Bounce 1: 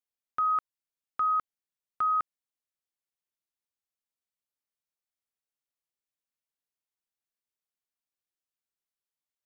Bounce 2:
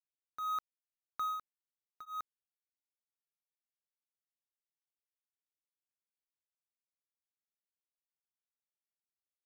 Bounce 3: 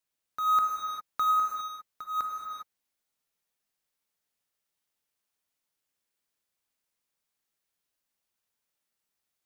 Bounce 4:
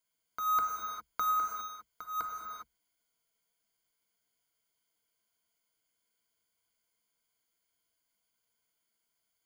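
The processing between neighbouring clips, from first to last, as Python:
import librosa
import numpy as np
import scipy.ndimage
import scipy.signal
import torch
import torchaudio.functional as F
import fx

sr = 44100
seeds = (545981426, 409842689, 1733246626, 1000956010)

y1 = scipy.signal.medfilt(x, 41)
y1 = y1 * np.abs(np.cos(np.pi * 1.7 * np.arange(len(y1)) / sr))
y1 = y1 * librosa.db_to_amplitude(2.0)
y2 = fx.rev_gated(y1, sr, seeds[0], gate_ms=430, shape='flat', drr_db=0.0)
y2 = y2 * librosa.db_to_amplitude(9.0)
y3 = fx.ripple_eq(y2, sr, per_octave=1.8, db=13)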